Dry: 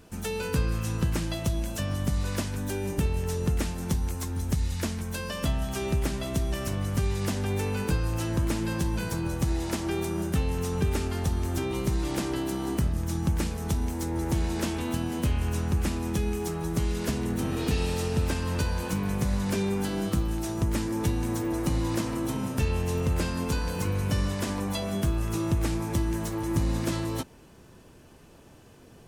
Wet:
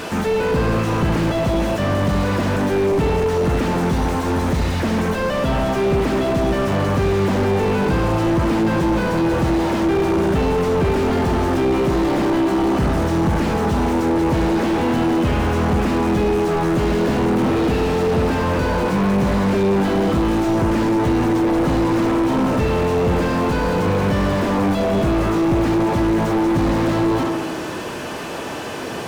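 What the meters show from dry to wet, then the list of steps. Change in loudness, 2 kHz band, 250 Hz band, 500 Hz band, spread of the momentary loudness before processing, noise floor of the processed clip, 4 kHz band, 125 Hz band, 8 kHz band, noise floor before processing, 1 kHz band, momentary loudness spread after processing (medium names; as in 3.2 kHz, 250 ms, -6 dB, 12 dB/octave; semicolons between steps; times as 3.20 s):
+10.5 dB, +12.0 dB, +12.5 dB, +15.0 dB, 3 LU, -27 dBFS, +7.5 dB, +6.5 dB, +0.5 dB, -52 dBFS, +15.5 dB, 2 LU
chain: tape echo 74 ms, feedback 83%, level -10 dB, low-pass 1 kHz; overdrive pedal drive 34 dB, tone 3.6 kHz, clips at -14 dBFS; slew-rate limiter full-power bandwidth 57 Hz; trim +4.5 dB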